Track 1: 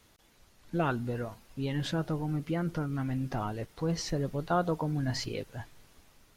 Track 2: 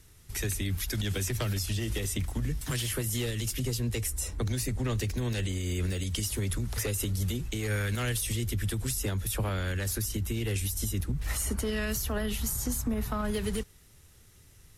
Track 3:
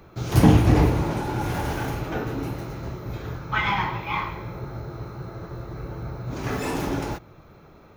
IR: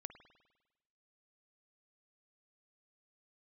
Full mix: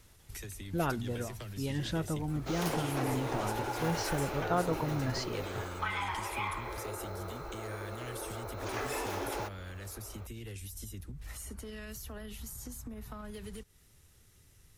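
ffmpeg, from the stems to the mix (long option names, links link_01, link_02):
-filter_complex "[0:a]volume=-2.5dB[link_01];[1:a]acompressor=threshold=-37dB:ratio=4,volume=-5dB[link_02];[2:a]highpass=frequency=370:width=0.5412,highpass=frequency=370:width=1.3066,acompressor=threshold=-32dB:ratio=6,adelay=2300,volume=-1dB[link_03];[link_01][link_02][link_03]amix=inputs=3:normalize=0"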